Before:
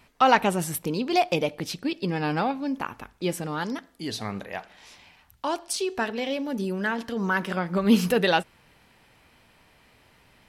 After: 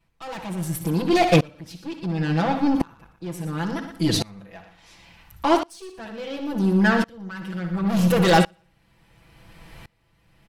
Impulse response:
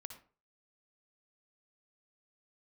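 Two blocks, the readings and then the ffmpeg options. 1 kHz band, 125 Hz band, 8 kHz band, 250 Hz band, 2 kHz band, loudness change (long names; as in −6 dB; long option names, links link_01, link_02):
0.0 dB, +8.5 dB, −0.5 dB, +4.5 dB, +1.0 dB, +4.0 dB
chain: -filter_complex "[0:a]lowshelf=frequency=210:gain=11.5,aeval=exprs='(tanh(14.1*val(0)+0.25)-tanh(0.25))/14.1':channel_layout=same,aecho=1:1:118|236|354:0.237|0.0522|0.0115,asplit=2[link_01][link_02];[1:a]atrim=start_sample=2205,atrim=end_sample=3528,adelay=6[link_03];[link_02][link_03]afir=irnorm=-1:irlink=0,volume=8.5dB[link_04];[link_01][link_04]amix=inputs=2:normalize=0,aeval=exprs='val(0)*pow(10,-27*if(lt(mod(-0.71*n/s,1),2*abs(-0.71)/1000),1-mod(-0.71*n/s,1)/(2*abs(-0.71)/1000),(mod(-0.71*n/s,1)-2*abs(-0.71)/1000)/(1-2*abs(-0.71)/1000))/20)':channel_layout=same,volume=7.5dB"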